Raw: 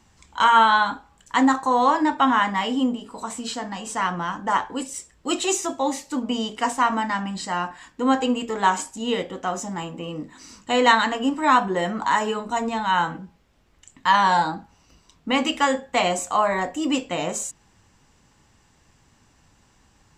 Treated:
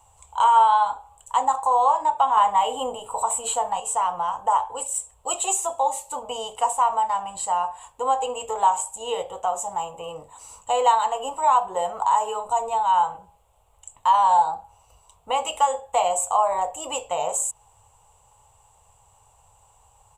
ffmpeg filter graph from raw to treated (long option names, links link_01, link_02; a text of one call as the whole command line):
ffmpeg -i in.wav -filter_complex "[0:a]asettb=1/sr,asplit=3[link_01][link_02][link_03];[link_01]atrim=end=2.374[link_04];[link_02]atrim=start=2.37:end=3.8,asetpts=PTS-STARTPTS,afade=type=in:duration=0.004:curve=qsin,afade=type=out:start_time=1.426:duration=0.004:curve=qsin,equalizer=frequency=5200:width=3.9:gain=-10.5,acontrast=43[link_05];[link_03]atrim=start=3.796[link_06];[link_04][link_05]acrossfade=duration=0.004:curve1=hsin:curve2=qsin[link_07];[link_07][link_06]acrossfade=duration=0.004:curve1=qsin:curve2=hsin,firequalizer=gain_entry='entry(100,0);entry(220,-24);entry(310,-21);entry(450,0);entry(860,10);entry(1700,-15);entry(2800,-2);entry(5200,-13);entry(7800,10);entry(13000,7)':delay=0.05:min_phase=1,acompressor=threshold=-25dB:ratio=1.5" out.wav